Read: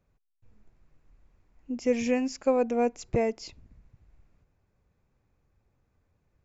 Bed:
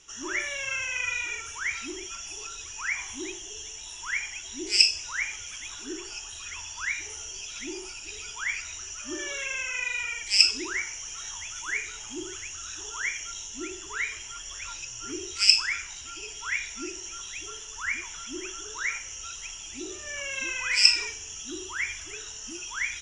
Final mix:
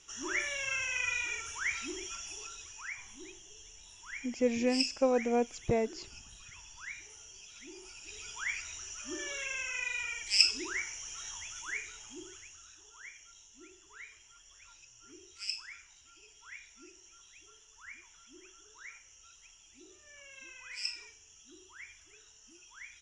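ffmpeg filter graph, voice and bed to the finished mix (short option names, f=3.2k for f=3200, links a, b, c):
-filter_complex "[0:a]adelay=2550,volume=-3.5dB[a];[1:a]volume=4.5dB,afade=t=out:st=2.09:d=0.89:silence=0.316228,afade=t=in:st=7.72:d=0.65:silence=0.398107,afade=t=out:st=11.3:d=1.51:silence=0.211349[b];[a][b]amix=inputs=2:normalize=0"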